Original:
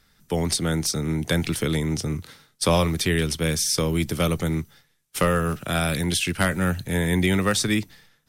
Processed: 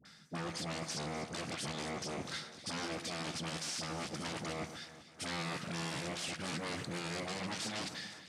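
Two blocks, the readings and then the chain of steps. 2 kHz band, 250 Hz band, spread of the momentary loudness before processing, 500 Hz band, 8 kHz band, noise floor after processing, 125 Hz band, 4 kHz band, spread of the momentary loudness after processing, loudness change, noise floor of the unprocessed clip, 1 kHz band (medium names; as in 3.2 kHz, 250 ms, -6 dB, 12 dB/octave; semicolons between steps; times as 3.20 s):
-14.0 dB, -18.0 dB, 7 LU, -17.5 dB, -15.5 dB, -58 dBFS, -20.5 dB, -12.0 dB, 4 LU, -16.0 dB, -65 dBFS, -12.5 dB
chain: reverse; compression 6:1, threshold -35 dBFS, peak gain reduction 18.5 dB; reverse; wavefolder -39 dBFS; cabinet simulation 160–8500 Hz, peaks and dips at 170 Hz +4 dB, 420 Hz -7 dB, 980 Hz -4 dB, 4.8 kHz +4 dB; phase dispersion highs, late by 53 ms, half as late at 880 Hz; on a send: echo whose repeats swap between lows and highs 125 ms, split 1.9 kHz, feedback 72%, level -11 dB; on the sum: peak limiter -36 dBFS, peak gain reduction 5 dB; trim +6.5 dB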